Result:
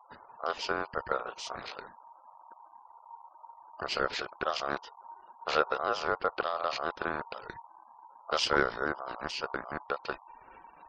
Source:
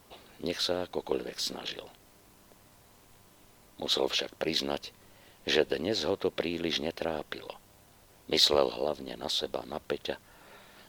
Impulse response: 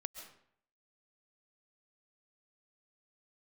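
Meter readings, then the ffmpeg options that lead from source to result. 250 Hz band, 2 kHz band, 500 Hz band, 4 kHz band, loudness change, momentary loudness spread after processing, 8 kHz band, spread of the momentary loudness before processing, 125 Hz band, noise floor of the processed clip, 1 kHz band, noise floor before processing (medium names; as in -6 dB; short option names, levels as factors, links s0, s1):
-6.5 dB, +4.5 dB, -3.5 dB, -8.0 dB, -2.5 dB, 22 LU, -6.5 dB, 13 LU, -4.0 dB, -58 dBFS, +7.0 dB, -59 dBFS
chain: -af "aemphasis=mode=reproduction:type=bsi,afftfilt=real='re*gte(hypot(re,im),0.00447)':imag='im*gte(hypot(re,im),0.00447)':win_size=1024:overlap=0.75,aeval=exprs='val(0)*sin(2*PI*930*n/s)':c=same"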